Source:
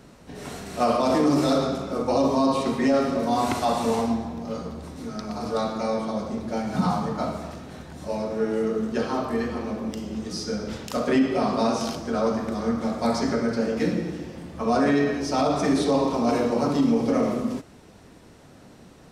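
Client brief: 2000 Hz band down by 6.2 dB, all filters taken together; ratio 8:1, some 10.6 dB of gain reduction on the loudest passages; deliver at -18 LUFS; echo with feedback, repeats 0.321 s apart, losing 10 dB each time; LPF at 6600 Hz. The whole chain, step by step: LPF 6600 Hz; bell 2000 Hz -8 dB; compressor 8:1, threshold -28 dBFS; feedback echo 0.321 s, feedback 32%, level -10 dB; gain +14.5 dB

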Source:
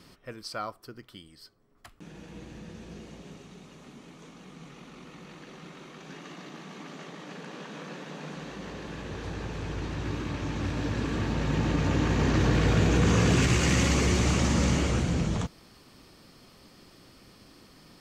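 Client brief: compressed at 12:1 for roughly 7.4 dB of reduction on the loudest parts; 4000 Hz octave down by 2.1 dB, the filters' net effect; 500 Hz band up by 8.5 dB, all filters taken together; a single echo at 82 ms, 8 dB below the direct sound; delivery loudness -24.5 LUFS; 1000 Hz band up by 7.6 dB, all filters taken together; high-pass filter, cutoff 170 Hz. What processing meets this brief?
HPF 170 Hz; bell 500 Hz +9 dB; bell 1000 Hz +7 dB; bell 4000 Hz -3.5 dB; compressor 12:1, threshold -24 dBFS; echo 82 ms -8 dB; gain +6.5 dB

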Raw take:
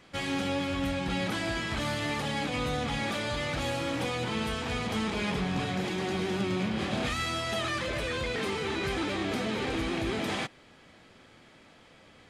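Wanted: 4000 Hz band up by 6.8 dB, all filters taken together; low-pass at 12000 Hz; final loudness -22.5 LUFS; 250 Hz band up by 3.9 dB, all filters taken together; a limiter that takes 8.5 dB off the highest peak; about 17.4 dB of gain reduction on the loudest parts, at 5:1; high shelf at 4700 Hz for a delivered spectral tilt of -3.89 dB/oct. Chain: LPF 12000 Hz; bell 250 Hz +5 dB; bell 4000 Hz +5.5 dB; high shelf 4700 Hz +7 dB; compressor 5:1, threshold -44 dBFS; gain +23.5 dB; limiter -14 dBFS

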